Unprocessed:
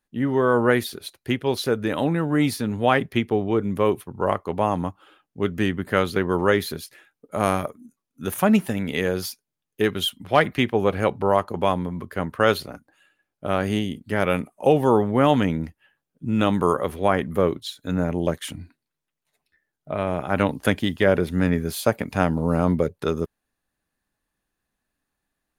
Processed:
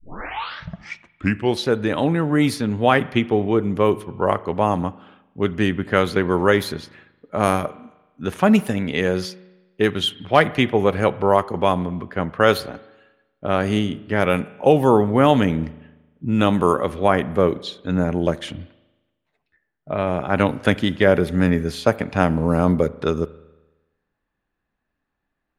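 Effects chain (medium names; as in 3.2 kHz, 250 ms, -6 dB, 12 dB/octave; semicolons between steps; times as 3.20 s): tape start-up on the opening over 1.62 s; level-controlled noise filter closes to 2.5 kHz, open at -15.5 dBFS; spring tank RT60 1.1 s, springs 38 ms, chirp 50 ms, DRR 17.5 dB; trim +3 dB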